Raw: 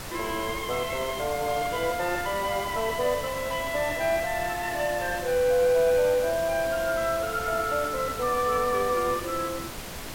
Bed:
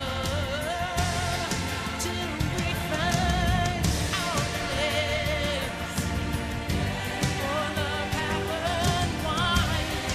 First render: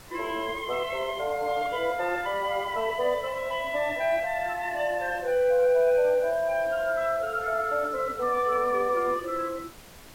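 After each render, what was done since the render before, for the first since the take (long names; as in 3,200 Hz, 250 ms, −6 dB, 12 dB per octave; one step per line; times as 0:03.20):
noise reduction from a noise print 11 dB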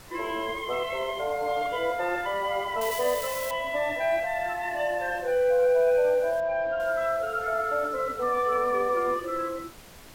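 0:02.81–0:03.51: spike at every zero crossing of −24 dBFS
0:06.40–0:06.80: high-frequency loss of the air 220 metres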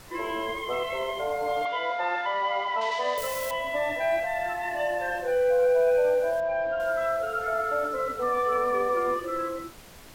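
0:01.65–0:03.18: loudspeaker in its box 270–5,500 Hz, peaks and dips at 330 Hz −7 dB, 480 Hz −7 dB, 900 Hz +6 dB, 2,200 Hz +3 dB, 3,700 Hz +5 dB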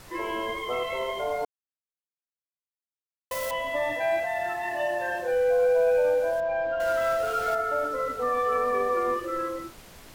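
0:01.45–0:03.31: silence
0:03.92–0:05.32: high-pass filter 70 Hz
0:06.80–0:07.55: converter with a step at zero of −33 dBFS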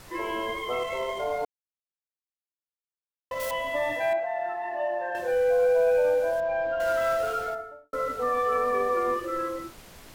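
0:00.79–0:03.40: running median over 9 samples
0:04.13–0:05.15: resonant band-pass 700 Hz, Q 0.82
0:07.20–0:07.93: fade out and dull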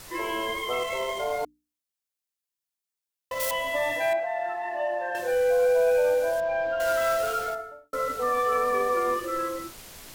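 high-shelf EQ 3,100 Hz +8.5 dB
mains-hum notches 60/120/180/240/300 Hz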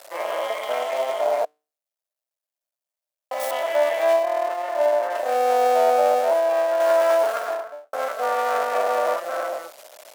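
sub-harmonics by changed cycles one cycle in 2, muted
high-pass with resonance 610 Hz, resonance Q 7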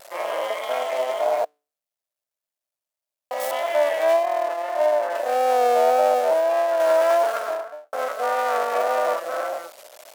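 pitch vibrato 1.7 Hz 44 cents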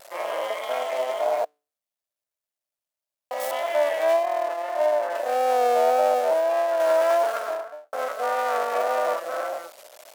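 level −2 dB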